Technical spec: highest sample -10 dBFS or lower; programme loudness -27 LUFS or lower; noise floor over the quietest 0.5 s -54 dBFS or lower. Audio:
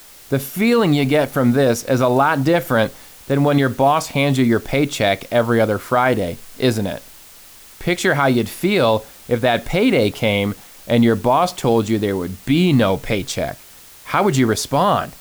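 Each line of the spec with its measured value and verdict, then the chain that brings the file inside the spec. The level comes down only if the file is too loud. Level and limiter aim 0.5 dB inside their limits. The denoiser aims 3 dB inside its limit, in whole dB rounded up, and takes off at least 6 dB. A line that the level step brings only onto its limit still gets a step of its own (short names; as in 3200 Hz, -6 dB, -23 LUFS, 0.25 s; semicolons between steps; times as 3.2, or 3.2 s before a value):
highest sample -5.0 dBFS: fail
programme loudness -17.5 LUFS: fail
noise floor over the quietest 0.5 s -43 dBFS: fail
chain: denoiser 6 dB, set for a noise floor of -43 dBFS; gain -10 dB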